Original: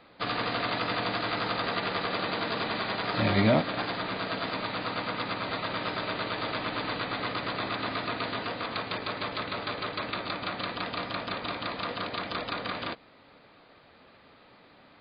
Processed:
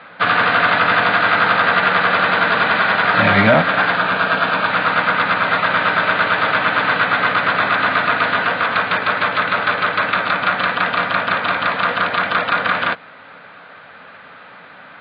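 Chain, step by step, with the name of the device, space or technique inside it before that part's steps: overdrive pedal into a guitar cabinet (overdrive pedal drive 14 dB, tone 3600 Hz, clips at -11.5 dBFS; speaker cabinet 81–3500 Hz, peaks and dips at 95 Hz +6 dB, 170 Hz +8 dB, 350 Hz -8 dB, 1500 Hz +9 dB); 3.96–4.72 notch 2000 Hz, Q 7; gain +8 dB

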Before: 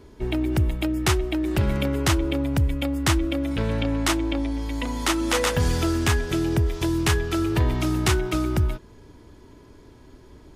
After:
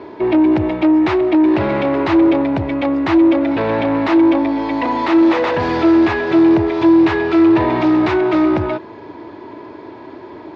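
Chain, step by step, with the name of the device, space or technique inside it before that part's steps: overdrive pedal into a guitar cabinet (overdrive pedal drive 27 dB, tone 3900 Hz, clips at -9 dBFS; speaker cabinet 98–3700 Hz, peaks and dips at 100 Hz +5 dB, 330 Hz +10 dB, 650 Hz +6 dB, 920 Hz +6 dB, 1400 Hz -3 dB, 3100 Hz -7 dB); gain -2.5 dB

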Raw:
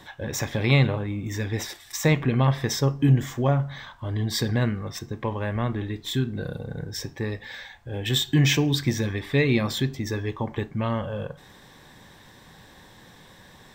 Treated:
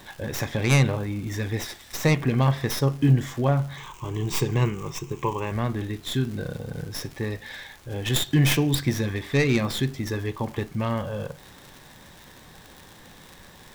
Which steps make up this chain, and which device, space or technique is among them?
record under a worn stylus (tracing distortion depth 0.15 ms; crackle 130/s -34 dBFS; pink noise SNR 28 dB); 3.77–5.52 ripple EQ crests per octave 0.72, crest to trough 12 dB

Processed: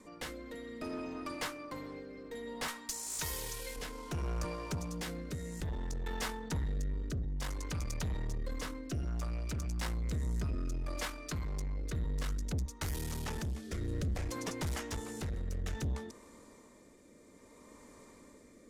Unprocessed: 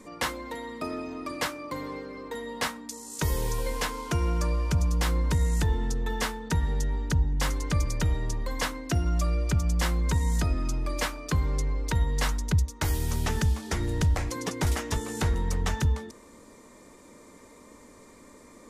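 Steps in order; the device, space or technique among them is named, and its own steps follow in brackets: 2.68–3.76 tilt shelf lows -8.5 dB, about 760 Hz; 4.44–5.61 HPF 140 Hz 12 dB/oct; overdriven rotary cabinet (tube stage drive 28 dB, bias 0.45; rotary speaker horn 0.6 Hz); gain -2.5 dB

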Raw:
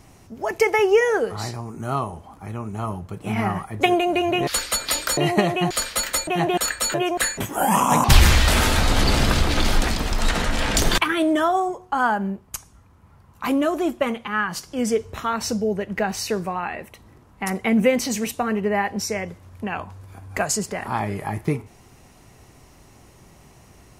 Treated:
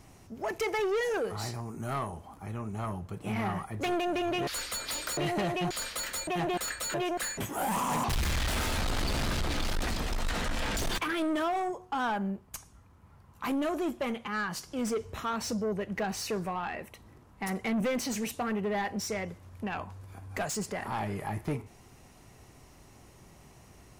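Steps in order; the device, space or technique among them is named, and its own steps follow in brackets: saturation between pre-emphasis and de-emphasis (high shelf 3900 Hz +8 dB; soft clip -21 dBFS, distortion -7 dB; high shelf 3900 Hz -8 dB); 1.03–2.44 high shelf 11000 Hz +6 dB; gain -5 dB

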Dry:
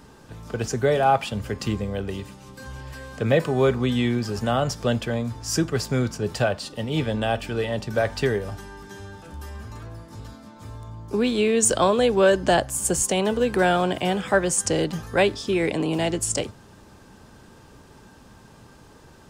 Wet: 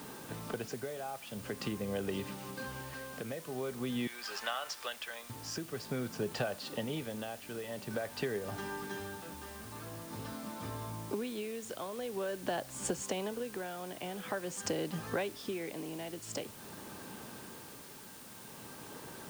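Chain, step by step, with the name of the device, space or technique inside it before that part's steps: 4.07–5.3 HPF 1300 Hz 12 dB/oct; medium wave at night (BPF 160–4400 Hz; compressor 10:1, threshold -34 dBFS, peak gain reduction 21 dB; tremolo 0.47 Hz, depth 59%; whine 9000 Hz -64 dBFS; white noise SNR 13 dB); gain +2.5 dB

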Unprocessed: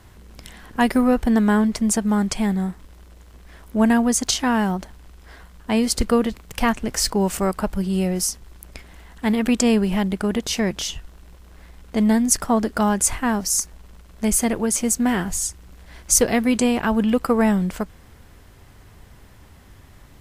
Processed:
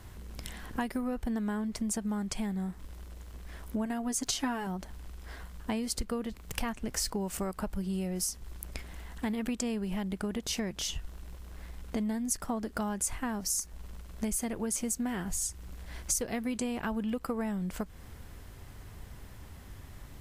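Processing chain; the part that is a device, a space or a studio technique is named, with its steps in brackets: ASMR close-microphone chain (low shelf 140 Hz +4 dB; compressor 6:1, threshold -28 dBFS, peak gain reduction 16 dB; high shelf 8300 Hz +4 dB); 3.85–4.67 comb 7.1 ms, depth 61%; gain -3 dB

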